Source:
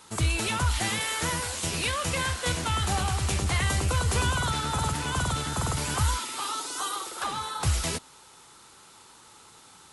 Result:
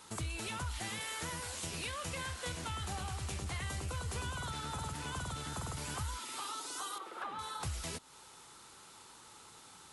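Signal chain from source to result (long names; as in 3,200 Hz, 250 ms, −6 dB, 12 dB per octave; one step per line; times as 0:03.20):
0:06.98–0:07.39: three-way crossover with the lows and the highs turned down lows −12 dB, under 170 Hz, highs −18 dB, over 2,800 Hz
downward compressor 2.5 to 1, threshold −38 dBFS, peak gain reduction 11.5 dB
level −3.5 dB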